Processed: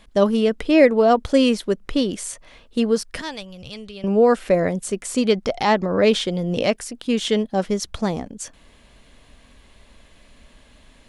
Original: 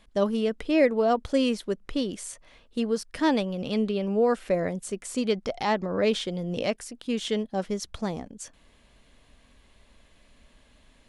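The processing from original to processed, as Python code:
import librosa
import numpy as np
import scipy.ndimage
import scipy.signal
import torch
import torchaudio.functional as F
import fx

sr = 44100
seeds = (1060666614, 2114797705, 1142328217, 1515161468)

y = fx.curve_eq(x, sr, hz=(110.0, 230.0, 5700.0), db=(0, -22, -4), at=(3.21, 4.04))
y = y * 10.0 ** (7.5 / 20.0)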